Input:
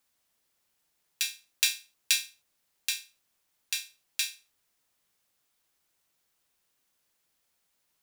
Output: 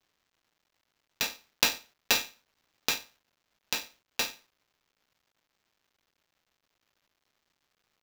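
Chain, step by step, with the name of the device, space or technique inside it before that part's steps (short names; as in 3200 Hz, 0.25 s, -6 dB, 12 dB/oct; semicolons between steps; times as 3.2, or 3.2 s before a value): 2.15–2.98 bell 2100 Hz +3 dB 2.9 oct; early companding sampler (sample-rate reducer 9700 Hz, jitter 0%; companded quantiser 6-bit)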